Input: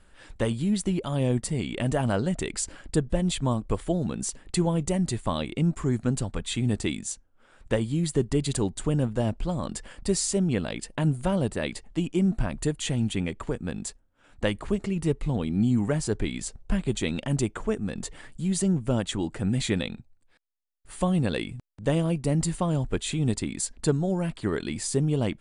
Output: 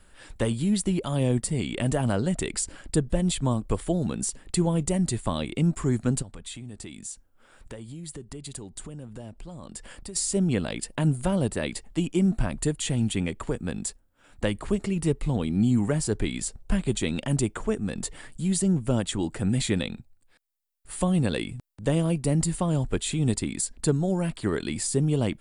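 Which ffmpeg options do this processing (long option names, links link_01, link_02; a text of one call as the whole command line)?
ffmpeg -i in.wav -filter_complex "[0:a]asplit=3[link_01][link_02][link_03];[link_01]afade=type=out:start_time=6.21:duration=0.02[link_04];[link_02]acompressor=threshold=-40dB:ratio=4:attack=3.2:release=140:knee=1:detection=peak,afade=type=in:start_time=6.21:duration=0.02,afade=type=out:start_time=10.15:duration=0.02[link_05];[link_03]afade=type=in:start_time=10.15:duration=0.02[link_06];[link_04][link_05][link_06]amix=inputs=3:normalize=0,highshelf=frequency=8000:gain=10,bandreject=frequency=6200:width=18,acrossover=split=430[link_07][link_08];[link_08]acompressor=threshold=-30dB:ratio=2[link_09];[link_07][link_09]amix=inputs=2:normalize=0,volume=1dB" out.wav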